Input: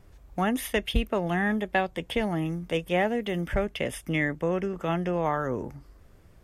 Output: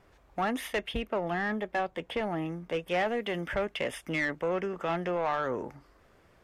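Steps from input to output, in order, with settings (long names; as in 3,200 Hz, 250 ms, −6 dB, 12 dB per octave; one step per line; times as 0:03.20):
mid-hump overdrive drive 18 dB, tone 2,200 Hz, clips at −10.5 dBFS, from 0:00.81 tone 1,300 Hz, from 0:02.88 tone 2,600 Hz
level −8 dB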